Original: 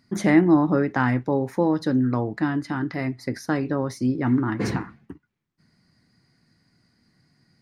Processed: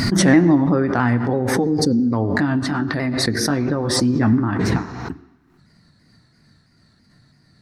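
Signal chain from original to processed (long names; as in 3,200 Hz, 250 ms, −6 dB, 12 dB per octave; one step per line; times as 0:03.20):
pitch shifter swept by a sawtooth −2 semitones, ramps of 333 ms
in parallel at +3 dB: downward compressor, threshold −29 dBFS, peak gain reduction 16.5 dB
on the sum: low-shelf EQ 73 Hz +6 dB
gain on a spectral selection 0:01.64–0:02.13, 540–4,100 Hz −21 dB
on a send at −14 dB: parametric band 100 Hz −12.5 dB 1.8 octaves + convolution reverb RT60 1.0 s, pre-delay 59 ms
on the sum: background raised ahead of every attack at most 30 dB per second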